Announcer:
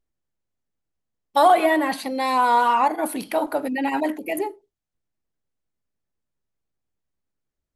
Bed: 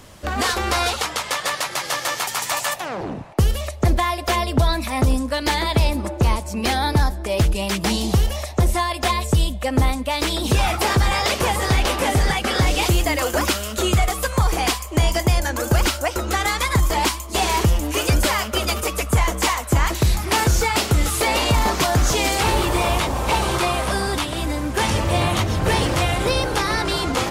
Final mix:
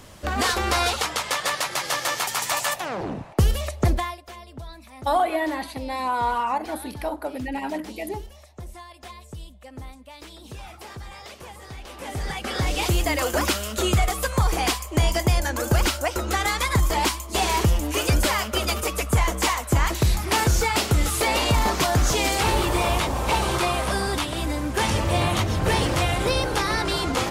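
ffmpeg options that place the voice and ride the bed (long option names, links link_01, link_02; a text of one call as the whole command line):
ffmpeg -i stem1.wav -i stem2.wav -filter_complex "[0:a]adelay=3700,volume=-6dB[link_01];[1:a]volume=17dB,afade=type=out:start_time=3.81:duration=0.41:silence=0.105925,afade=type=in:start_time=11.87:duration=1.28:silence=0.11885[link_02];[link_01][link_02]amix=inputs=2:normalize=0" out.wav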